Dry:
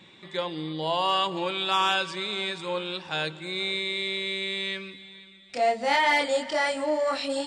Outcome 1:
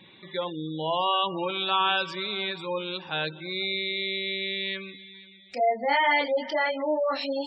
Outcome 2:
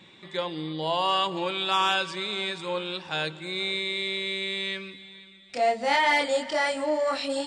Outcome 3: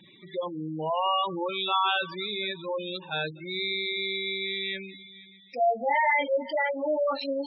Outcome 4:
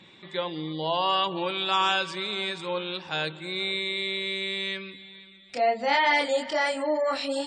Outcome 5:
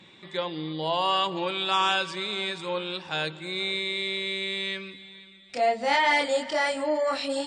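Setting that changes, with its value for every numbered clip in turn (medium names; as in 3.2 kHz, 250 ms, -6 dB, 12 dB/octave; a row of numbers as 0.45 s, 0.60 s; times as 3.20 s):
spectral gate, under each frame's peak: -20 dB, -60 dB, -10 dB, -35 dB, -45 dB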